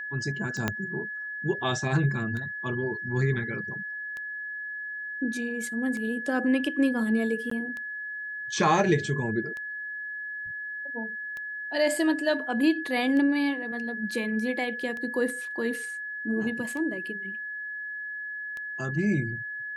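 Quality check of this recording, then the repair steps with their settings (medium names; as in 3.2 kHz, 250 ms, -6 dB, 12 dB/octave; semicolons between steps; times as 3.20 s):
tick 33 1/3 rpm -24 dBFS
whine 1.7 kHz -33 dBFS
0.68 s: pop -11 dBFS
7.50–7.51 s: dropout 14 ms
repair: de-click; band-stop 1.7 kHz, Q 30; interpolate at 7.50 s, 14 ms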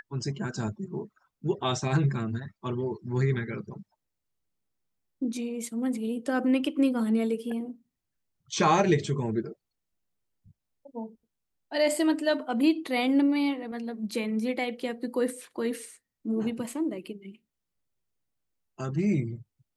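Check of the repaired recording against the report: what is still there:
0.68 s: pop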